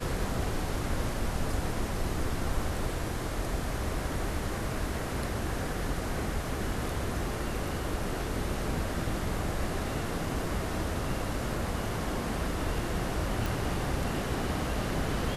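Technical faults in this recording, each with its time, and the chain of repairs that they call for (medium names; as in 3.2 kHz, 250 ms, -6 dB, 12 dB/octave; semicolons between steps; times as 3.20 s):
13.46 s: pop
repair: de-click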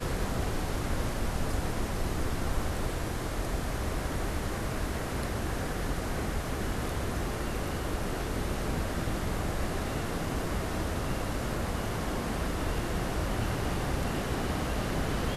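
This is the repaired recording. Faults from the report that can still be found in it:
nothing left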